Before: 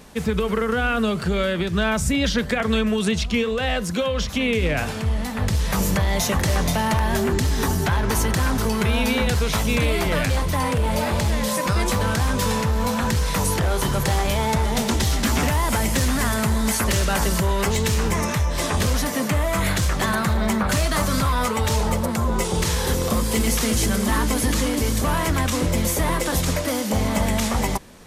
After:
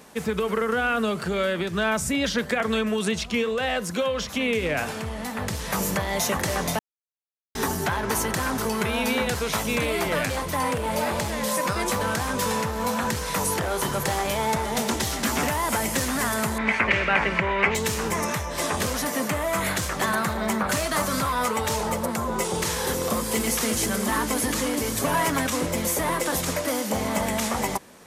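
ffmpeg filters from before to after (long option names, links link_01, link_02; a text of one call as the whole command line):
ffmpeg -i in.wav -filter_complex "[0:a]asettb=1/sr,asplit=3[link_01][link_02][link_03];[link_01]atrim=end=16.584[link_04];[link_02]atrim=start=16.58:end=17.75,asetpts=PTS-STARTPTS,afade=type=in:duration=0.004:curve=qsin,afade=type=out:start_time=1.166:duration=0.004:curve=qsin,lowpass=frequency=2300:width_type=q:width=5[link_05];[link_03]atrim=start=17.746[link_06];[link_04][link_05]acrossfade=duration=0.004:curve1=hsin:curve2=qsin[link_07];[link_07][link_06]acrossfade=duration=0.004:curve1=qsin:curve2=hsin,asettb=1/sr,asplit=3[link_08][link_09][link_10];[link_08]atrim=end=24.954[link_11];[link_09]atrim=start=24.95:end=25.49,asetpts=PTS-STARTPTS,afade=type=in:duration=0.004:curve=qsin,afade=type=out:start_time=0.536:duration=0.004:curve=qsin,aecho=1:1:7.2:0.75,atrim=end_sample=23814[link_12];[link_10]atrim=start=25.486[link_13];[link_11][link_12]acrossfade=duration=0.004:curve1=hsin:curve2=qsin[link_14];[link_14][link_13]acrossfade=duration=0.004:curve1=qsin:curve2=hsin,asplit=3[link_15][link_16][link_17];[link_15]atrim=end=6.79,asetpts=PTS-STARTPTS,afade=type=out:start_time=6.786:duration=0.004:curve=hsin[link_18];[link_16]atrim=start=6.79:end=7.55,asetpts=PTS-STARTPTS,volume=0[link_19];[link_17]atrim=start=7.55,asetpts=PTS-STARTPTS,afade=type=in:duration=0.004:curve=hsin[link_20];[link_18][link_19][link_20]concat=n=3:v=0:a=1,highpass=frequency=310:poles=1,equalizer=frequency=3800:width=0.88:gain=-3.5" out.wav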